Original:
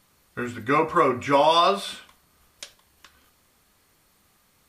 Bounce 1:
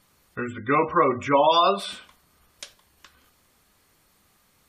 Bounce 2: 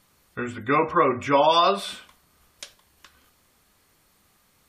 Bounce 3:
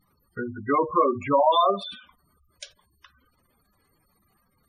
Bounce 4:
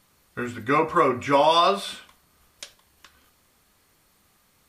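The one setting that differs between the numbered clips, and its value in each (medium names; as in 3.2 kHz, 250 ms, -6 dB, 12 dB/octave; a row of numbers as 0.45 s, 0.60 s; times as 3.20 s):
spectral gate, under each frame's peak: -25 dB, -35 dB, -10 dB, -60 dB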